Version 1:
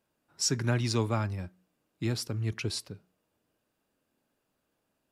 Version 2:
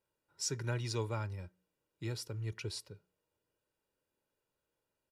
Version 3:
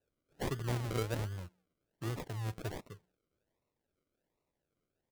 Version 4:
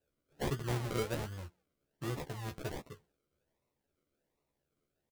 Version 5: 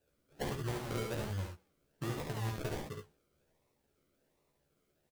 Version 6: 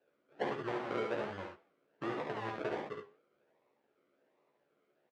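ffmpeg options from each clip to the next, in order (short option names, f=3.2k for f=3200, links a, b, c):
-af "aecho=1:1:2.1:0.56,volume=-9dB"
-af "acrusher=samples=39:mix=1:aa=0.000001:lfo=1:lforange=23.4:lforate=1.3,volume=1dB"
-filter_complex "[0:a]asplit=2[a][b];[b]adelay=14,volume=-5dB[c];[a][c]amix=inputs=2:normalize=0"
-filter_complex "[0:a]acompressor=threshold=-41dB:ratio=5,asplit=2[a][b];[b]aecho=0:1:52|71:0.355|0.596[c];[a][c]amix=inputs=2:normalize=0,volume=5dB"
-af "flanger=delay=7.9:depth=3.2:regen=-86:speed=1.8:shape=sinusoidal,highpass=330,lowpass=2.2k,volume=9.5dB"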